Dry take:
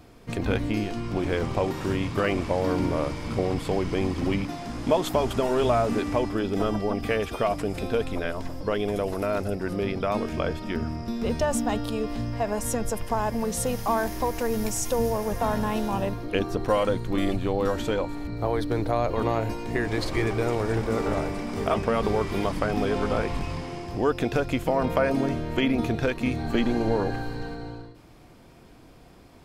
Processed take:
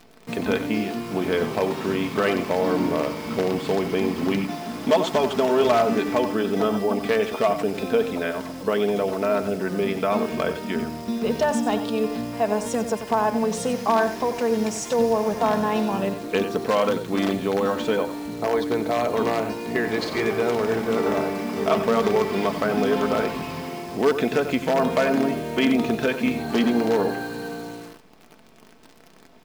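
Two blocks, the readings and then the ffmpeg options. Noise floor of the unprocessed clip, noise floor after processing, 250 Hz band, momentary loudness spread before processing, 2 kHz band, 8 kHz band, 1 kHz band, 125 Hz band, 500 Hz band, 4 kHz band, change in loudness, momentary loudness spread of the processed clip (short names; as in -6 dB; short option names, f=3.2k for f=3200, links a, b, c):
-50 dBFS, -50 dBFS, +3.5 dB, 6 LU, +4.0 dB, -0.5 dB, +3.5 dB, -4.0 dB, +4.5 dB, +4.0 dB, +3.5 dB, 6 LU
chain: -filter_complex "[0:a]aecho=1:1:92:0.282,asplit=2[a][b];[b]aeval=exprs='(mod(5.31*val(0)+1,2)-1)/5.31':c=same,volume=-7.5dB[c];[a][c]amix=inputs=2:normalize=0,highpass=170,lowpass=5.9k,acrusher=bits=8:dc=4:mix=0:aa=0.000001,aecho=1:1:4.6:0.39"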